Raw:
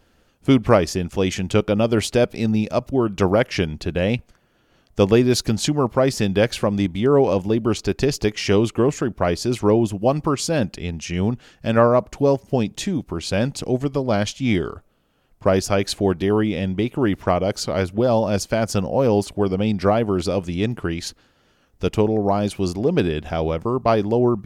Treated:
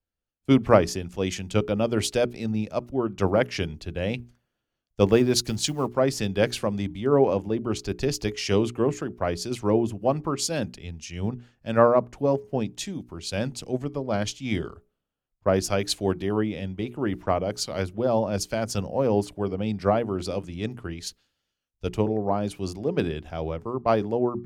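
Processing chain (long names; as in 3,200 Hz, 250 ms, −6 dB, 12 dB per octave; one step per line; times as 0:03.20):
0:05.06–0:05.96: mu-law and A-law mismatch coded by A
mains-hum notches 60/120/180/240/300/360/420 Hz
multiband upward and downward expander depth 70%
level −5.5 dB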